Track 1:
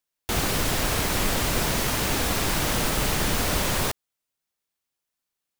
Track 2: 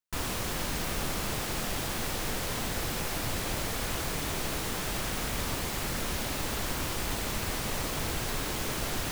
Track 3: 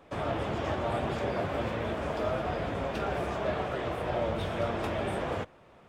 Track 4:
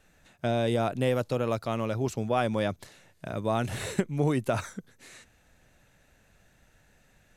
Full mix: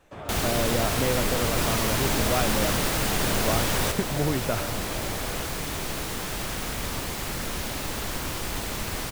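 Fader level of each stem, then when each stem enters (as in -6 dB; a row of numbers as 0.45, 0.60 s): -2.0, +1.5, -6.0, -1.0 dB; 0.00, 1.45, 0.00, 0.00 s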